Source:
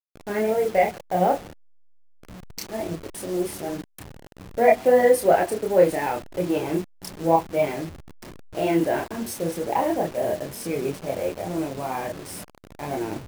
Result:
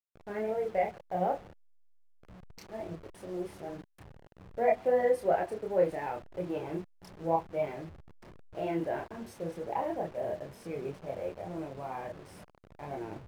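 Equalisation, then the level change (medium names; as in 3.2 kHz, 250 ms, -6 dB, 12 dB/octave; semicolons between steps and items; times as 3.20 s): low-pass 1.7 kHz 6 dB/octave; peaking EQ 270 Hz -5.5 dB 0.78 oct; -8.5 dB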